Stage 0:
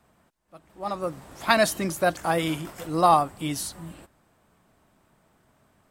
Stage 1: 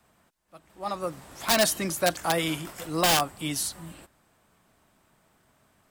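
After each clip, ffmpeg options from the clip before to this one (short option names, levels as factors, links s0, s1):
-filter_complex "[0:a]acrossover=split=400|750|3500[s0][s1][s2][s3];[s2]aeval=exprs='(mod(8.91*val(0)+1,2)-1)/8.91':c=same[s4];[s0][s1][s4][s3]amix=inputs=4:normalize=0,tiltshelf=f=1400:g=-3"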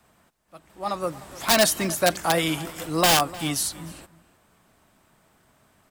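-filter_complex "[0:a]asplit=2[s0][s1];[s1]adelay=303.2,volume=0.126,highshelf=f=4000:g=-6.82[s2];[s0][s2]amix=inputs=2:normalize=0,volume=1.5"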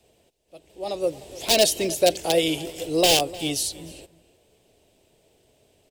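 -af "firequalizer=gain_entry='entry(100,0);entry(190,-7);entry(430,9);entry(1200,-19);entry(2700,3);entry(14000,-4)':delay=0.05:min_phase=1"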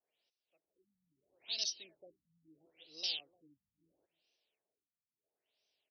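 -filter_complex "[0:a]acrossover=split=340|3000[s0][s1][s2];[s1]acompressor=threshold=0.00112:ratio=1.5[s3];[s0][s3][s2]amix=inputs=3:normalize=0,aderivative,afftfilt=real='re*lt(b*sr/1024,230*pow(6300/230,0.5+0.5*sin(2*PI*0.75*pts/sr)))':imag='im*lt(b*sr/1024,230*pow(6300/230,0.5+0.5*sin(2*PI*0.75*pts/sr)))':win_size=1024:overlap=0.75,volume=0.447"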